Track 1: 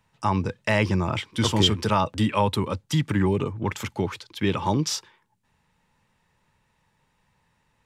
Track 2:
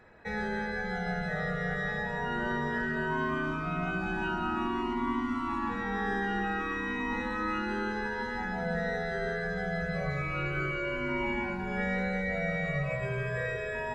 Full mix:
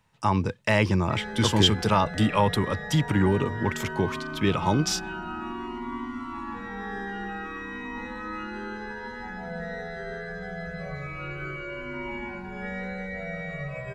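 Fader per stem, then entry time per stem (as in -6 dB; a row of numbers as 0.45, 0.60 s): 0.0, -3.0 dB; 0.00, 0.85 s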